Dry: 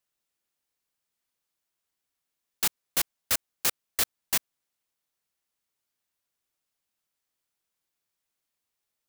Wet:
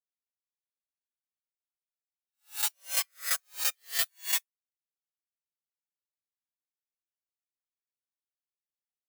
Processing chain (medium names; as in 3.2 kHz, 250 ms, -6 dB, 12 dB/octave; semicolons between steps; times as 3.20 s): reverse spectral sustain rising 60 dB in 0.61 s; high-pass 480 Hz 12 dB/octave; reverse; upward compressor, threshold -34 dBFS; reverse; comb 7.1 ms, depth 65%; on a send at -22 dB: tilt shelf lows -5 dB + reverberation RT60 0.50 s, pre-delay 4 ms; on the sum: spectral contrast expander 2.5:1; trim -7 dB